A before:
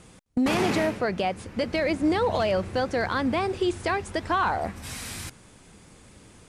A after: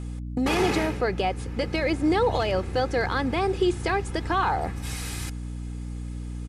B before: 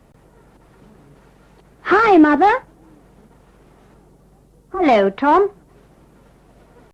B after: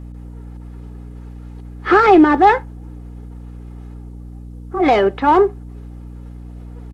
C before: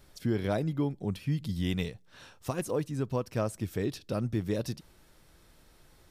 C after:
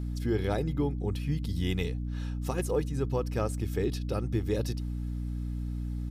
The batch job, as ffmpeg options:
-af "aecho=1:1:2.4:0.43,aeval=exprs='val(0)+0.0251*(sin(2*PI*60*n/s)+sin(2*PI*2*60*n/s)/2+sin(2*PI*3*60*n/s)/3+sin(2*PI*4*60*n/s)/4+sin(2*PI*5*60*n/s)/5)':c=same"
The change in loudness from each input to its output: 0.0, +1.0, +1.0 LU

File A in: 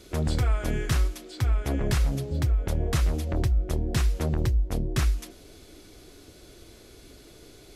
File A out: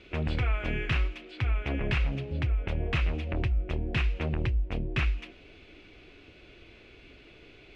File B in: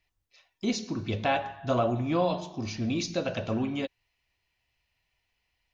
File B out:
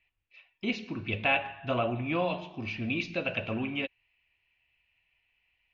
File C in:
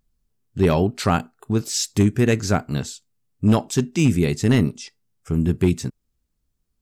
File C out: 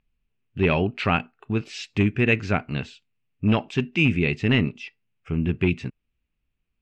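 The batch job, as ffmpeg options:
-af "lowpass=f=2.6k:t=q:w=4.7,volume=-4dB"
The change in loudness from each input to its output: -3.5, -1.5, -3.0 LU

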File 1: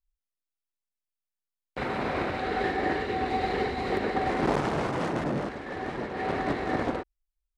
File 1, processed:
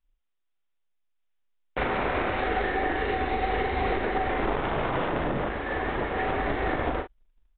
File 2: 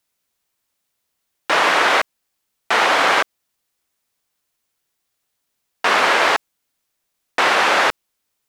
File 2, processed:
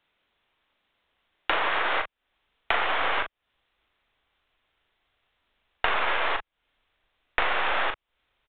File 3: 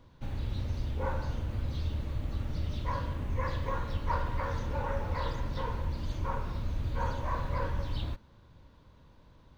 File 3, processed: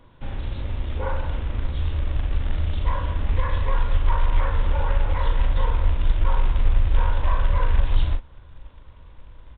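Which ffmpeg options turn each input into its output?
-filter_complex "[0:a]aeval=exprs='0.891*(cos(1*acos(clip(val(0)/0.891,-1,1)))-cos(1*PI/2))+0.0398*(cos(6*acos(clip(val(0)/0.891,-1,1)))-cos(6*PI/2))':c=same,equalizer=f=120:w=0.53:g=-5,acompressor=threshold=-30dB:ratio=16,asubboost=boost=4:cutoff=86,acrusher=bits=5:mode=log:mix=0:aa=0.000001,asplit=2[a][b];[b]adelay=39,volume=-7dB[c];[a][c]amix=inputs=2:normalize=0,aresample=8000,aresample=44100,volume=7dB"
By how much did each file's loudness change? +1.5, -10.5, +9.5 LU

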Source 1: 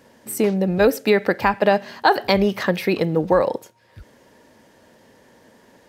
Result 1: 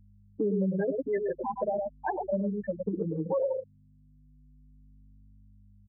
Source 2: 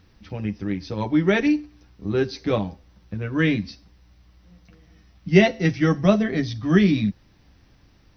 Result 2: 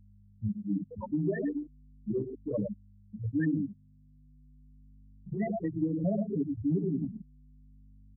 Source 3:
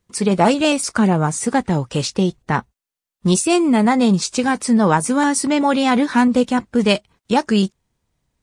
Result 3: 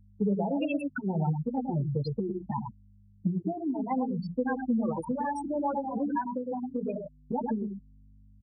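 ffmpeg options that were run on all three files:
-filter_complex "[0:a]bandreject=f=60:t=h:w=6,bandreject=f=120:t=h:w=6,bandreject=f=180:t=h:w=6,bandreject=f=240:t=h:w=6,bandreject=f=300:t=h:w=6,bandreject=f=360:t=h:w=6,alimiter=limit=-11dB:level=0:latency=1:release=21,acontrast=58,aecho=1:1:105:0.596,afftfilt=real='re*gte(hypot(re,im),0.708)':imag='im*gte(hypot(re,im),0.708)':win_size=1024:overlap=0.75,adynamicequalizer=threshold=0.0631:dfrequency=240:dqfactor=0.9:tfrequency=240:tqfactor=0.9:attack=5:release=100:ratio=0.375:range=2.5:mode=cutabove:tftype=bell,aeval=exprs='val(0)+0.00501*(sin(2*PI*50*n/s)+sin(2*PI*2*50*n/s)/2+sin(2*PI*3*50*n/s)/3+sin(2*PI*4*50*n/s)/4+sin(2*PI*5*50*n/s)/5)':c=same,highpass=45,highshelf=f=3.4k:g=-7.5,acompressor=threshold=-18dB:ratio=6,asplit=2[a][b];[b]adelay=6.7,afreqshift=-0.35[c];[a][c]amix=inputs=2:normalize=1,volume=-5.5dB"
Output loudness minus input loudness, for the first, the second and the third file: -11.5, -11.5, -14.0 LU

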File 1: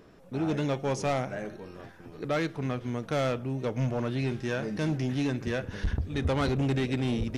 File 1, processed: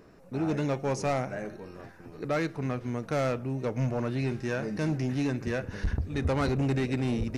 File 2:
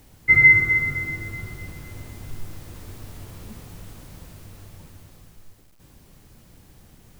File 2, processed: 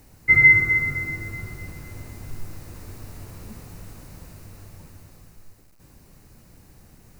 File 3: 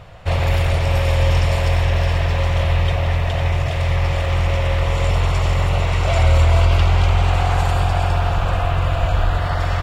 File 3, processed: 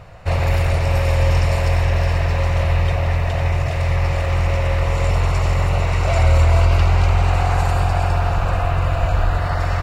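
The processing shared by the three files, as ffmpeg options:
-af "equalizer=f=3.3k:t=o:w=0.25:g=-10"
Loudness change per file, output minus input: 0.0, -0.5, 0.0 LU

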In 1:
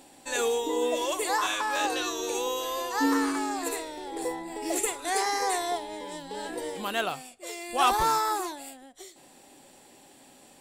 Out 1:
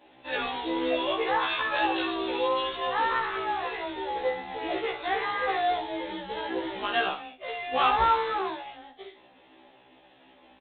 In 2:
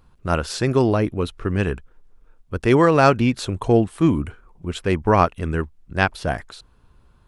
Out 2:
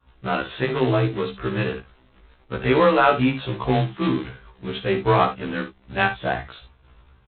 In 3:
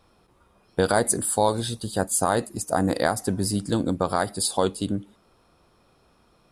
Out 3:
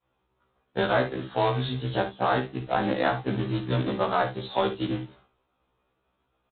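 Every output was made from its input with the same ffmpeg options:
-filter_complex "[0:a]agate=range=-33dB:threshold=-49dB:ratio=3:detection=peak,equalizer=f=200:w=0.66:g=-3.5,bandreject=f=60:t=h:w=6,bandreject=f=120:t=h:w=6,bandreject=f=180:t=h:w=6,asplit=2[a][b];[b]acompressor=threshold=-32dB:ratio=12,volume=2dB[c];[a][c]amix=inputs=2:normalize=0,afreqshift=16,aresample=8000,acrusher=bits=3:mode=log:mix=0:aa=0.000001,aresample=44100,aecho=1:1:55|73:0.299|0.141,afftfilt=real='re*1.73*eq(mod(b,3),0)':imag='im*1.73*eq(mod(b,3),0)':win_size=2048:overlap=0.75"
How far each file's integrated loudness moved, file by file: +0.5, -2.0, -3.0 LU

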